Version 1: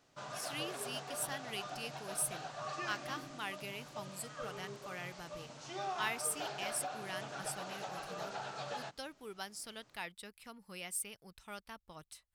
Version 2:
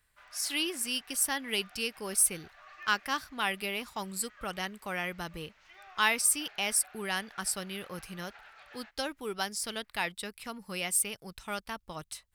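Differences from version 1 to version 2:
speech +11.0 dB; background: add band-pass 2000 Hz, Q 2.8

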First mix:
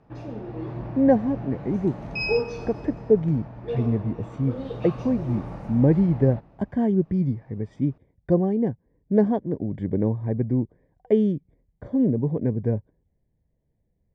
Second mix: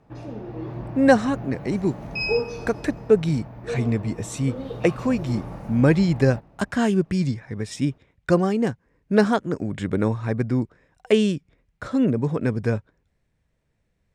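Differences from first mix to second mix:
speech: remove running mean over 33 samples; master: remove air absorption 62 m

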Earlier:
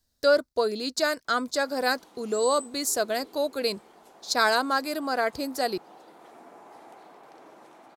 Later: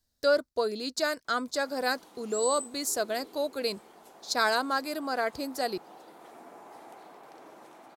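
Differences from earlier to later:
speech -3.5 dB; background: add high shelf 11000 Hz +7.5 dB

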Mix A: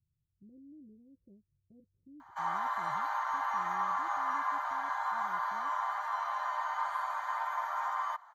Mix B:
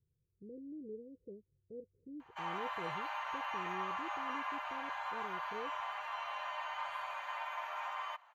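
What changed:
background -8.0 dB; master: remove fixed phaser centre 1100 Hz, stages 4

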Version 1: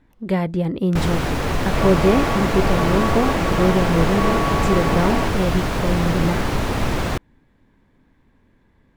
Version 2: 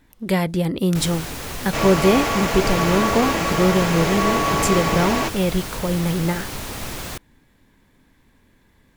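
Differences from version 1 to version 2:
first sound -11.5 dB; master: remove LPF 1400 Hz 6 dB/oct

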